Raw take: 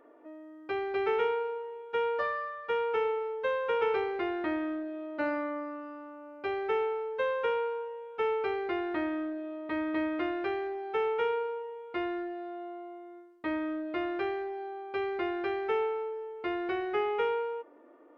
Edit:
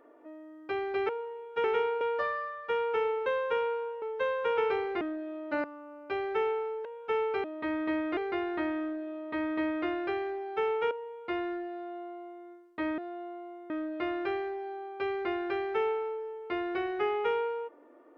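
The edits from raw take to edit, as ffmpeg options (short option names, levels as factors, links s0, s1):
-filter_complex "[0:a]asplit=14[s0][s1][s2][s3][s4][s5][s6][s7][s8][s9][s10][s11][s12][s13];[s0]atrim=end=1.092[s14];[s1]atrim=start=1.458:end=2.012[s15];[s2]atrim=start=1.088:end=1.462[s16];[s3]atrim=start=2.008:end=3.262[s17];[s4]atrim=start=7.188:end=7.952[s18];[s5]atrim=start=3.258:end=4.252[s19];[s6]atrim=start=4.678:end=5.312[s20];[s7]atrim=start=5.978:end=7.192[s21];[s8]atrim=start=7.948:end=8.542[s22];[s9]atrim=start=9.508:end=10.242[s23];[s10]atrim=start=8.538:end=11.282[s24];[s11]atrim=start=11.568:end=13.642[s25];[s12]atrim=start=12.388:end=13.112[s26];[s13]atrim=start=13.638[s27];[s14][s15]acrossfade=d=0.004:c1=hsin:c2=hsin[s28];[s28][s16]acrossfade=d=0.004:c1=hsin:c2=hsin[s29];[s29][s17]acrossfade=d=0.004:c1=hsin:c2=hsin[s30];[s30][s18]acrossfade=d=0.004:c1=hsin:c2=hsin[s31];[s31][s19]acrossfade=d=0.004:c1=hsin:c2=hsin[s32];[s32][s20]acrossfade=d=0.004:c1=hsin:c2=hsin[s33];[s33][s21]acrossfade=d=0.004:c1=hsin:c2=hsin[s34];[s34][s22]acrossfade=d=0.004:c1=hsin:c2=hsin[s35];[s35][s23]acrossfade=d=0.004:c1=hsin:c2=hsin[s36];[s36][s24]acrossfade=d=0.004:c1=hsin:c2=hsin[s37];[s37][s25]acrossfade=d=0.004:c1=hsin:c2=hsin[s38];[s38][s26]acrossfade=d=0.004:c1=hsin:c2=hsin[s39];[s39][s27]acrossfade=d=0.004:c1=hsin:c2=hsin"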